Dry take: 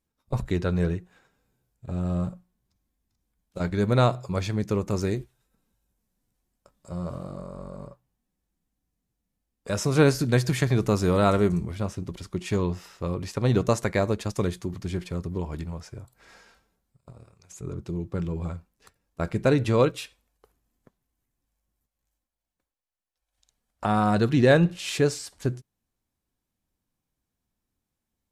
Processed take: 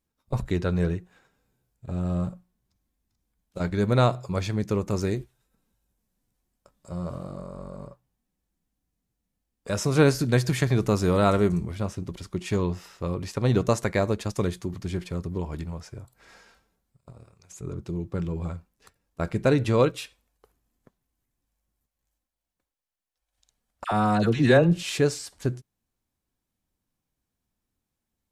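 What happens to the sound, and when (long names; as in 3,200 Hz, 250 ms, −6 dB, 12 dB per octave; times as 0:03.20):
0:23.84–0:24.83: all-pass dispersion lows, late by 71 ms, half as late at 990 Hz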